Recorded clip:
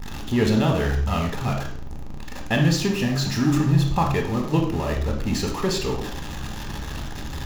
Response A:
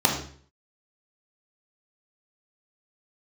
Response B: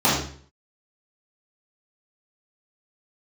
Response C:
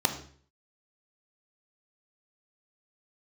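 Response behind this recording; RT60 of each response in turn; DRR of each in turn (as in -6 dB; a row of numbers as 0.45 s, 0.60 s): A; 0.50 s, 0.50 s, 0.50 s; 0.5 dB, -9.0 dB, 6.0 dB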